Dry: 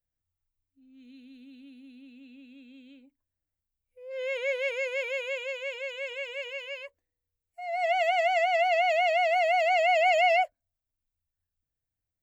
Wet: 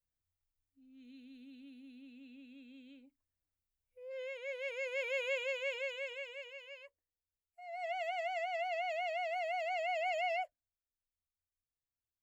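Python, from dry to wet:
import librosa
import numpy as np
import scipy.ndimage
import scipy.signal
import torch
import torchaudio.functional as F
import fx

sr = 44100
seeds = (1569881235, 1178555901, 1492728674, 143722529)

y = fx.gain(x, sr, db=fx.line((4.06, -4.5), (4.37, -14.5), (5.26, -3.0), (5.8, -3.0), (6.53, -13.0)))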